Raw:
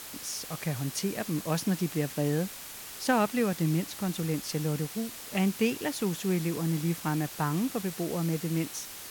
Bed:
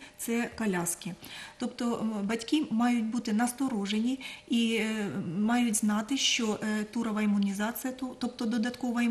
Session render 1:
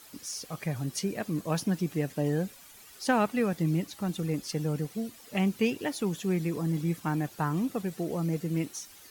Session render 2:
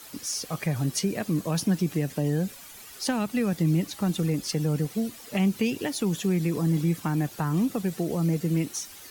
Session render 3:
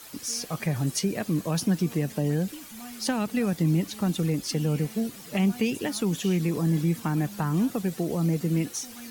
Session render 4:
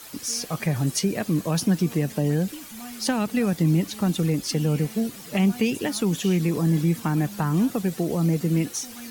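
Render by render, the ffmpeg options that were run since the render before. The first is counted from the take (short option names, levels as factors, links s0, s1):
-af "afftdn=nr=12:nf=-43"
-filter_complex "[0:a]asplit=2[s0][s1];[s1]alimiter=limit=0.0708:level=0:latency=1:release=101,volume=1.12[s2];[s0][s2]amix=inputs=2:normalize=0,acrossover=split=260|3000[s3][s4][s5];[s4]acompressor=threshold=0.0355:ratio=6[s6];[s3][s6][s5]amix=inputs=3:normalize=0"
-filter_complex "[1:a]volume=0.15[s0];[0:a][s0]amix=inputs=2:normalize=0"
-af "volume=1.41"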